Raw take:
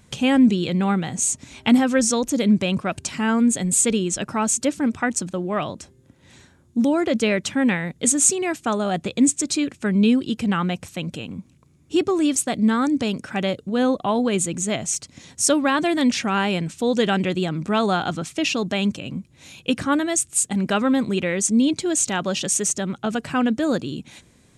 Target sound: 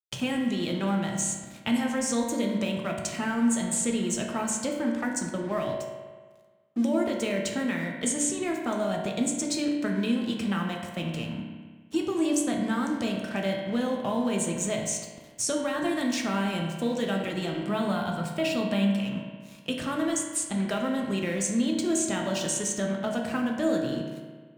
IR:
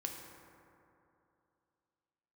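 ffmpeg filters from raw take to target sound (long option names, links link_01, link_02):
-filter_complex "[0:a]aeval=exprs='sgn(val(0))*max(abs(val(0))-0.00841,0)':channel_layout=same,asettb=1/sr,asplit=3[link_01][link_02][link_03];[link_01]atrim=end=17.604[link_04];[link_02]atrim=start=17.6:end=18.97,asetpts=PTS-STARTPTS,afade=type=in:duration=0.004:curve=qsin,afade=type=out:start_time=1.366:duration=0.004:curve=qsin,equalizer=frequency=200:width_type=o:width=0.33:gain=9,equalizer=frequency=315:width_type=o:width=0.33:gain=-8,equalizer=frequency=1000:width_type=o:width=0.33:gain=3,equalizer=frequency=6300:width_type=o:width=0.33:gain=-11[link_05];[link_03]atrim=start=18.966[link_06];[link_04][link_05]acrossfade=duration=0.004:curve1=hsin:curve2=qsin[link_07];[link_07][link_06]acrossfade=duration=0.004:curve1=qsin:curve2=hsin,acrossover=split=320|7000[link_08][link_09][link_10];[link_08]acompressor=threshold=-31dB:ratio=4[link_11];[link_09]acompressor=threshold=-29dB:ratio=4[link_12];[link_10]acompressor=threshold=-32dB:ratio=4[link_13];[link_11][link_12][link_13]amix=inputs=3:normalize=0[link_14];[1:a]atrim=start_sample=2205,asetrate=83790,aresample=44100[link_15];[link_14][link_15]afir=irnorm=-1:irlink=0,volume=5.5dB"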